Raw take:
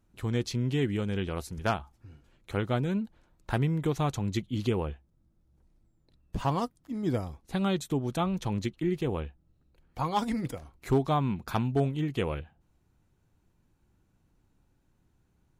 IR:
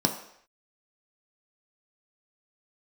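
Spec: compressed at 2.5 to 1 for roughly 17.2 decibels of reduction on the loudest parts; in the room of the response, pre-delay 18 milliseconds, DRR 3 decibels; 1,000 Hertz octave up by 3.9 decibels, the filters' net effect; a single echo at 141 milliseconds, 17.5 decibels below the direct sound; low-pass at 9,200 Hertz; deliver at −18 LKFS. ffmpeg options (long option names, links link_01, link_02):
-filter_complex "[0:a]lowpass=9200,equalizer=frequency=1000:width_type=o:gain=5,acompressor=threshold=-47dB:ratio=2.5,aecho=1:1:141:0.133,asplit=2[link_01][link_02];[1:a]atrim=start_sample=2205,adelay=18[link_03];[link_02][link_03]afir=irnorm=-1:irlink=0,volume=-13.5dB[link_04];[link_01][link_04]amix=inputs=2:normalize=0,volume=21.5dB"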